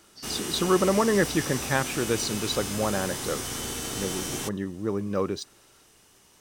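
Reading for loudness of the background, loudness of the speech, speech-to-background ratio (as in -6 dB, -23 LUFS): -32.0 LUFS, -28.0 LUFS, 4.0 dB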